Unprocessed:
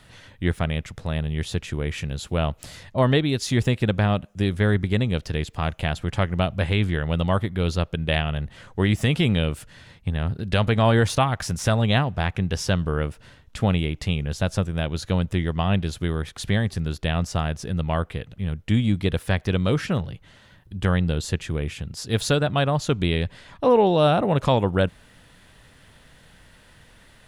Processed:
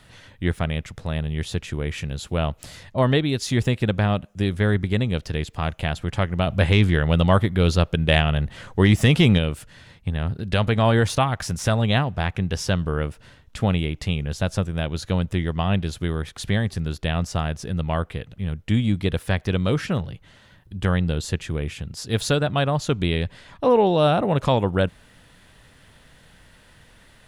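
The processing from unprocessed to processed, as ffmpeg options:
ffmpeg -i in.wav -filter_complex "[0:a]asplit=3[link_01][link_02][link_03];[link_01]afade=type=out:start_time=6.46:duration=0.02[link_04];[link_02]acontrast=29,afade=type=in:start_time=6.46:duration=0.02,afade=type=out:start_time=9.37:duration=0.02[link_05];[link_03]afade=type=in:start_time=9.37:duration=0.02[link_06];[link_04][link_05][link_06]amix=inputs=3:normalize=0" out.wav

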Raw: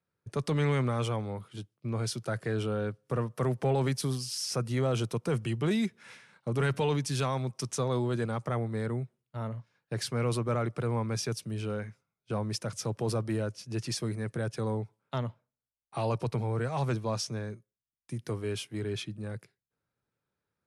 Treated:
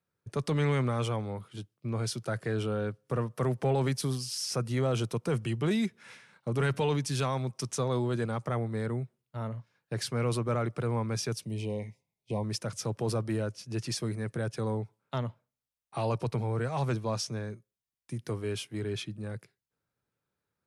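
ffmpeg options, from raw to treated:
ffmpeg -i in.wav -filter_complex "[0:a]asettb=1/sr,asplit=3[link_01][link_02][link_03];[link_01]atrim=end=11.454[link_04];[link_02]atrim=start=11.45:end=12.44,asetpts=PTS-STARTPTS,afade=type=in:duration=0.004:curve=qsin,afade=type=out:start_time=0.986:duration=0.004:curve=qsin,asuperstop=centerf=1400:order=12:qfactor=1.7[link_05];[link_03]atrim=start=12.436[link_06];[link_04][link_05]acrossfade=duration=0.004:curve1=hsin:curve2=qsin[link_07];[link_07][link_06]acrossfade=duration=0.004:curve1=qsin:curve2=hsin" out.wav

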